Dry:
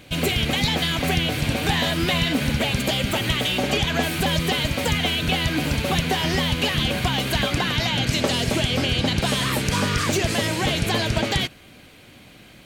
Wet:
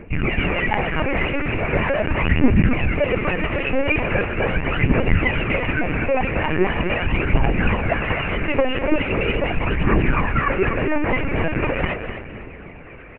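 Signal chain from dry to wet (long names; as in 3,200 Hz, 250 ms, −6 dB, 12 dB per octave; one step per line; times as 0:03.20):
Butterworth low-pass 2,800 Hz 96 dB per octave
parametric band 380 Hz +3 dB 0.66 octaves
reversed playback
upward compression, threshold −38 dBFS
reversed playback
phase shifter 0.42 Hz, delay 3.8 ms, feedback 69%
repeating echo 245 ms, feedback 30%, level −9 dB
on a send at −15 dB: convolution reverb RT60 5.7 s, pre-delay 19 ms
on the sum: linear-prediction vocoder at 8 kHz pitch kept
wrong playback speed 25 fps video run at 24 fps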